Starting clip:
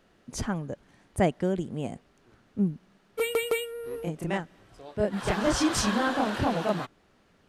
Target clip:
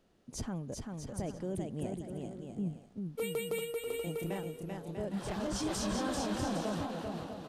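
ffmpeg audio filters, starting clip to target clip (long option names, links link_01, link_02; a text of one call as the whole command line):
ffmpeg -i in.wav -filter_complex "[0:a]equalizer=frequency=1700:width=0.79:gain=-7.5,alimiter=limit=-23dB:level=0:latency=1:release=12,asplit=2[link_01][link_02];[link_02]aecho=0:1:390|643.5|808.3|915.4|985:0.631|0.398|0.251|0.158|0.1[link_03];[link_01][link_03]amix=inputs=2:normalize=0,volume=-5.5dB" out.wav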